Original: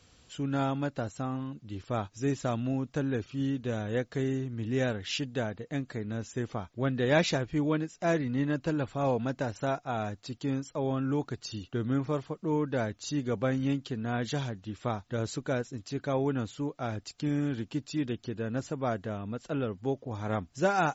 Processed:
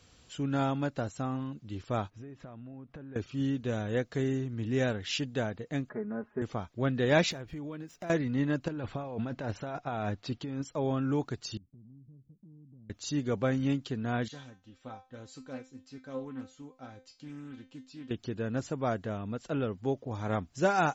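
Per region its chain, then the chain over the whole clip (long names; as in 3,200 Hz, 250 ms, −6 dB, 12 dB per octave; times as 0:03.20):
0:02.10–0:03.16: low-pass filter 2,100 Hz + downward compressor 20 to 1, threshold −42 dBFS
0:05.89–0:06.42: low-pass filter 1,500 Hz 24 dB per octave + low-shelf EQ 180 Hz −11.5 dB + comb filter 4.8 ms, depth 92%
0:07.31–0:08.10: running median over 5 samples + downward compressor 16 to 1, threshold −36 dBFS
0:08.68–0:10.65: low-pass filter 4,200 Hz + compressor whose output falls as the input rises −35 dBFS
0:11.57–0:12.90: transistor ladder low-pass 250 Hz, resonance 35% + downward compressor 5 to 1, threshold −53 dBFS
0:14.28–0:18.11: tuned comb filter 260 Hz, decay 0.27 s, mix 90% + highs frequency-modulated by the lows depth 0.22 ms
whole clip: no processing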